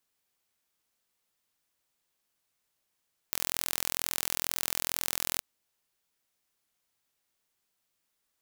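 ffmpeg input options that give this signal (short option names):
-f lavfi -i "aevalsrc='0.708*eq(mod(n,1045),0)':d=2.08:s=44100"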